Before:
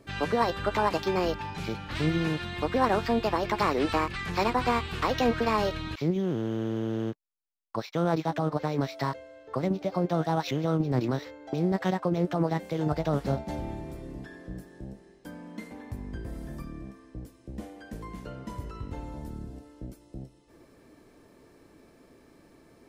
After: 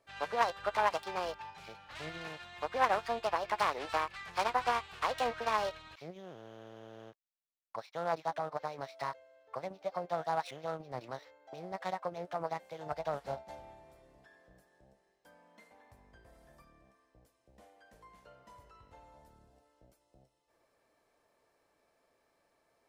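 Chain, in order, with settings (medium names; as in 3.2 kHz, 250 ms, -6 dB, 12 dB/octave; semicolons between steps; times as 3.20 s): self-modulated delay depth 0.14 ms; resonant low shelf 440 Hz -11.5 dB, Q 1.5; upward expansion 1.5:1, over -41 dBFS; trim -3 dB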